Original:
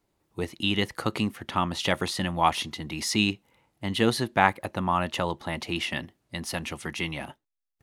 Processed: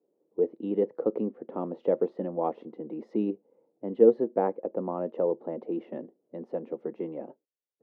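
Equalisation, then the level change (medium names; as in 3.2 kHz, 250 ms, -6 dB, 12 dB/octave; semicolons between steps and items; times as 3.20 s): high-pass 210 Hz 24 dB/octave; resonant low-pass 480 Hz, resonance Q 4.9; -3.5 dB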